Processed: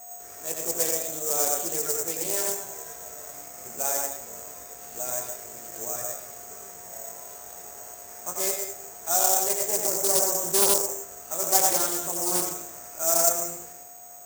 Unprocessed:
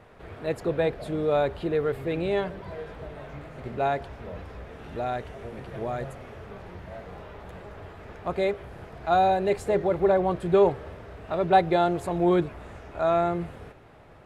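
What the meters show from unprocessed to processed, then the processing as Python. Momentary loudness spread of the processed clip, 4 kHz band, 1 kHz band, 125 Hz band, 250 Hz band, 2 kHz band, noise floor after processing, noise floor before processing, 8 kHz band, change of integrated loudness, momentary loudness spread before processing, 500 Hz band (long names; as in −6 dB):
19 LU, +8.5 dB, −6.0 dB, −15.0 dB, −10.0 dB, −3.5 dB, −44 dBFS, −50 dBFS, can't be measured, +2.0 dB, 21 LU, −7.0 dB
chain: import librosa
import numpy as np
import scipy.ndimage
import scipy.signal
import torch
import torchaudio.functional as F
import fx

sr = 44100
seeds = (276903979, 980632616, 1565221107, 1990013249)

p1 = fx.low_shelf(x, sr, hz=340.0, db=-7.0)
p2 = p1 + 10.0 ** (-41.0 / 20.0) * np.sin(2.0 * np.pi * 710.0 * np.arange(len(p1)) / sr)
p3 = fx.low_shelf(p2, sr, hz=140.0, db=-11.5)
p4 = fx.doubler(p3, sr, ms=18.0, db=-6)
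p5 = p4 + fx.echo_multitap(p4, sr, ms=(80, 89, 114, 132, 199), db=(-17.5, -4.0, -10.0, -17.0, -12.0), dry=0)
p6 = fx.rev_freeverb(p5, sr, rt60_s=0.44, hf_ratio=0.35, predelay_ms=85, drr_db=9.5)
p7 = (np.kron(p6[::6], np.eye(6)[0]) * 6)[:len(p6)]
p8 = fx.doppler_dist(p7, sr, depth_ms=0.35)
y = p8 * 10.0 ** (-7.0 / 20.0)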